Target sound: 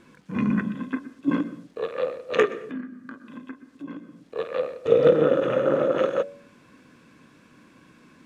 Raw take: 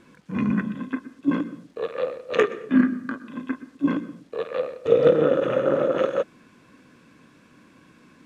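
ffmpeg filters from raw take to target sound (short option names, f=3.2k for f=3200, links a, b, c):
-filter_complex "[0:a]asettb=1/sr,asplit=3[a][b][c];[a]atrim=end=2.704[d];[b]atrim=start=2.7:end=4.36,asetpts=PTS-STARTPTS,afade=t=in:d=0.004:c=qsin,afade=t=out:st=1.656:d=0.004:c=qsin,acompressor=threshold=-40dB:ratio=2.5[e];[c]atrim=start=4.356[f];[d][e]acrossfade=d=0.004:c1=hsin:c2=qsin[g];[g][f]acrossfade=d=0.004:c1=qsin:c2=hsin,bandreject=f=94.31:t=h:w=4,bandreject=f=188.62:t=h:w=4,bandreject=f=282.93:t=h:w=4,bandreject=f=377.24:t=h:w=4,bandreject=f=471.55:t=h:w=4,bandreject=f=565.86:t=h:w=4,bandreject=f=660.17:t=h:w=4,bandreject=f=754.48:t=h:w=4"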